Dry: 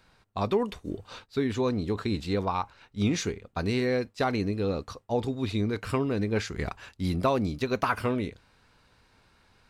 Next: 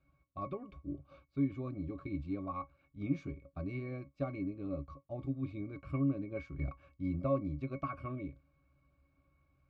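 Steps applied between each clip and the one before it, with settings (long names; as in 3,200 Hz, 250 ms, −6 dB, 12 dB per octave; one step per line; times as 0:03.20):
resonances in every octave C#, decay 0.12 s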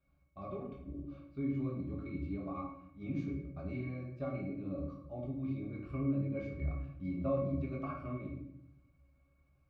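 rectangular room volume 180 cubic metres, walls mixed, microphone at 1.3 metres
level −5.5 dB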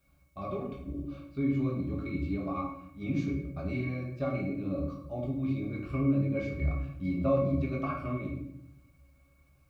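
high-shelf EQ 3,000 Hz +9.5 dB
level +6.5 dB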